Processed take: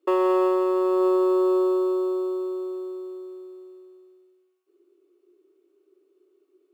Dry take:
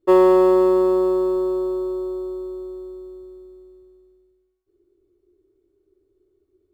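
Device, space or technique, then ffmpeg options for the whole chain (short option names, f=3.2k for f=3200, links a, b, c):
laptop speaker: -af "highpass=f=300:w=0.5412,highpass=f=300:w=1.3066,equalizer=f=1.2k:t=o:w=0.35:g=6.5,equalizer=f=2.7k:t=o:w=0.39:g=8,alimiter=limit=-17dB:level=0:latency=1:release=202,volume=2.5dB"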